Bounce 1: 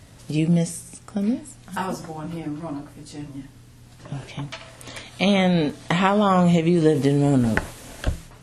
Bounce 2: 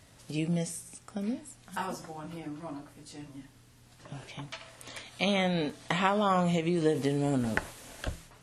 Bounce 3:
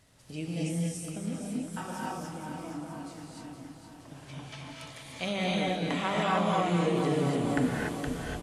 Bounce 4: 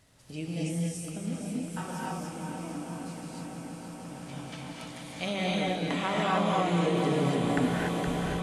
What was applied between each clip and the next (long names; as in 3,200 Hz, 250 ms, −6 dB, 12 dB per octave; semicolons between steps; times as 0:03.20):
low-shelf EQ 360 Hz −6.5 dB; level −6 dB
repeating echo 469 ms, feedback 59%, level −8 dB; reverb whose tail is shaped and stops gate 320 ms rising, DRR −3.5 dB; level −6 dB
echo that builds up and dies away 162 ms, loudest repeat 8, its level −17 dB